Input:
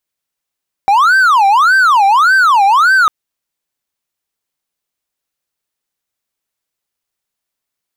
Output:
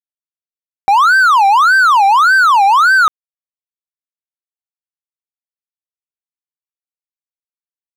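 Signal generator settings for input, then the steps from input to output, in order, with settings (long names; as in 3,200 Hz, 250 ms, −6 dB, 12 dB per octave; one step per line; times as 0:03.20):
siren wail 782–1,560 Hz 1.7 per second triangle −4 dBFS 2.20 s
bit reduction 10 bits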